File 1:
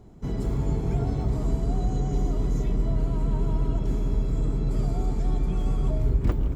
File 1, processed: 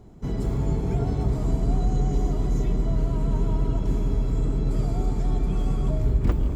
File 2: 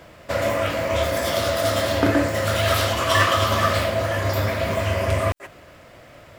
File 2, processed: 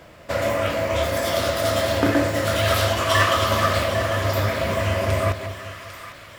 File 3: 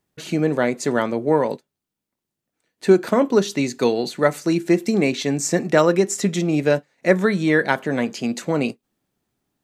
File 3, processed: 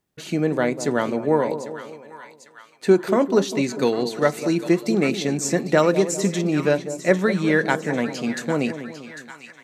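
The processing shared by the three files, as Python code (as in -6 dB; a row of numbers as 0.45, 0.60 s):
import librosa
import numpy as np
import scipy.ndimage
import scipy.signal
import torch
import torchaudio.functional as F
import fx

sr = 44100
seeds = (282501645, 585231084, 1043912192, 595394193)

y = fx.echo_split(x, sr, split_hz=1000.0, low_ms=198, high_ms=799, feedback_pct=52, wet_db=-11.0)
y = y * 10.0 ** (-22 / 20.0) / np.sqrt(np.mean(np.square(y)))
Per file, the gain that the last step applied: +1.5, -0.5, -1.5 dB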